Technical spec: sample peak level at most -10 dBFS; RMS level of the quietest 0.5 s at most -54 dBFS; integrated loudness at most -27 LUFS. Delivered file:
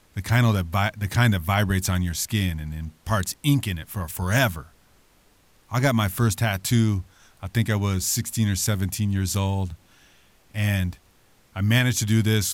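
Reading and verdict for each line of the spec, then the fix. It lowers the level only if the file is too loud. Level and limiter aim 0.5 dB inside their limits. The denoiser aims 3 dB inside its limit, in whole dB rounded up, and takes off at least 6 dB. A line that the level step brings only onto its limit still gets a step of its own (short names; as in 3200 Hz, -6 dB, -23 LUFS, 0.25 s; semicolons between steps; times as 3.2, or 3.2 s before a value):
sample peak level -8.5 dBFS: fail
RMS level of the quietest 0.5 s -58 dBFS: OK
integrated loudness -23.5 LUFS: fail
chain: gain -4 dB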